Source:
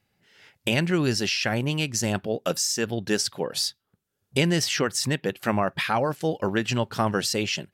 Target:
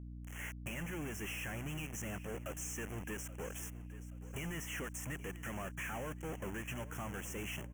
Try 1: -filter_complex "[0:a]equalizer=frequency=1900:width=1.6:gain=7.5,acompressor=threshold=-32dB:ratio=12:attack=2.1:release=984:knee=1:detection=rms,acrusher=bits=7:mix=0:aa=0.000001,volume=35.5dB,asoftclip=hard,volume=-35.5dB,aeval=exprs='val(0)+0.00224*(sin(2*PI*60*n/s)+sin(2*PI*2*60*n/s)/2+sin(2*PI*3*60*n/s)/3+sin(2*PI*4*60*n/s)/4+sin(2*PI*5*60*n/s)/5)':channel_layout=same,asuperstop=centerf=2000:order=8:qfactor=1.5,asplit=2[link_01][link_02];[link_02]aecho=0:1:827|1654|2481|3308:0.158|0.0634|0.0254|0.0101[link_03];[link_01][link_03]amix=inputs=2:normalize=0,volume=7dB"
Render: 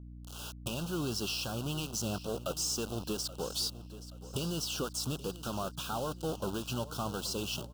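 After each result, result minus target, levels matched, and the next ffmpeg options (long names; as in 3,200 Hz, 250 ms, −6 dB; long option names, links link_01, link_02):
2,000 Hz band −10.0 dB; gain into a clipping stage and back: distortion −7 dB
-filter_complex "[0:a]equalizer=frequency=1900:width=1.6:gain=7.5,acompressor=threshold=-32dB:ratio=12:attack=2.1:release=984:knee=1:detection=rms,acrusher=bits=7:mix=0:aa=0.000001,volume=35.5dB,asoftclip=hard,volume=-35.5dB,aeval=exprs='val(0)+0.00224*(sin(2*PI*60*n/s)+sin(2*PI*2*60*n/s)/2+sin(2*PI*3*60*n/s)/3+sin(2*PI*4*60*n/s)/4+sin(2*PI*5*60*n/s)/5)':channel_layout=same,asuperstop=centerf=4300:order=8:qfactor=1.5,asplit=2[link_01][link_02];[link_02]aecho=0:1:827|1654|2481|3308:0.158|0.0634|0.0254|0.0101[link_03];[link_01][link_03]amix=inputs=2:normalize=0,volume=7dB"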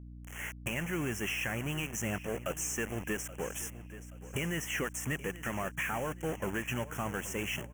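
gain into a clipping stage and back: distortion −7 dB
-filter_complex "[0:a]equalizer=frequency=1900:width=1.6:gain=7.5,acompressor=threshold=-32dB:ratio=12:attack=2.1:release=984:knee=1:detection=rms,acrusher=bits=7:mix=0:aa=0.000001,volume=47dB,asoftclip=hard,volume=-47dB,aeval=exprs='val(0)+0.00224*(sin(2*PI*60*n/s)+sin(2*PI*2*60*n/s)/2+sin(2*PI*3*60*n/s)/3+sin(2*PI*4*60*n/s)/4+sin(2*PI*5*60*n/s)/5)':channel_layout=same,asuperstop=centerf=4300:order=8:qfactor=1.5,asplit=2[link_01][link_02];[link_02]aecho=0:1:827|1654|2481|3308:0.158|0.0634|0.0254|0.0101[link_03];[link_01][link_03]amix=inputs=2:normalize=0,volume=7dB"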